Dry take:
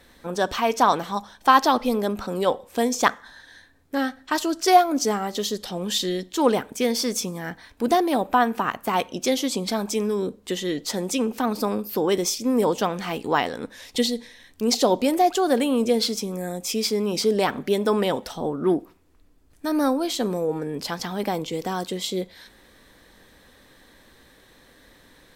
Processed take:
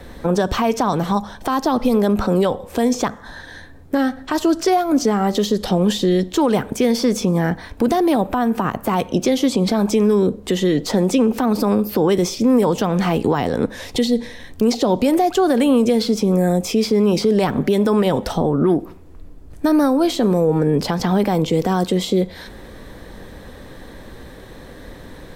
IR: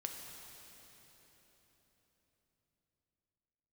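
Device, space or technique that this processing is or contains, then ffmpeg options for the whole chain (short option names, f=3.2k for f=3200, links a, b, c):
mastering chain: -filter_complex "[0:a]equalizer=f=270:t=o:w=0.77:g=-3.5,acrossover=split=240|1000|4700[a][b][c][d];[a]acompressor=threshold=-35dB:ratio=4[e];[b]acompressor=threshold=-32dB:ratio=4[f];[c]acompressor=threshold=-32dB:ratio=4[g];[d]acompressor=threshold=-37dB:ratio=4[h];[e][f][g][h]amix=inputs=4:normalize=0,acompressor=threshold=-34dB:ratio=1.5,tiltshelf=f=970:g=7,alimiter=level_in=20.5dB:limit=-1dB:release=50:level=0:latency=1,volume=-7dB"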